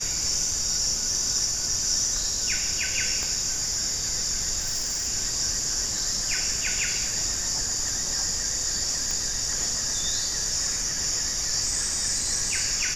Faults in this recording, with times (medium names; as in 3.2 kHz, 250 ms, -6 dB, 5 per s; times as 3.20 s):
3.23 s: pop -17 dBFS
4.61–5.08 s: clipped -23.5 dBFS
9.11 s: pop -14 dBFS